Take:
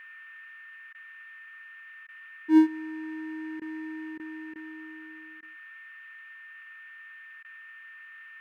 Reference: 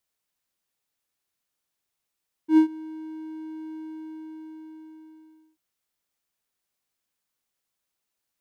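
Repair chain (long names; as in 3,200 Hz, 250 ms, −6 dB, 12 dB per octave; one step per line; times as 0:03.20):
notch filter 1,800 Hz, Q 30
repair the gap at 0:00.93/0:02.07/0:03.60/0:04.18/0:04.54/0:05.41/0:07.43, 15 ms
noise reduction from a noise print 30 dB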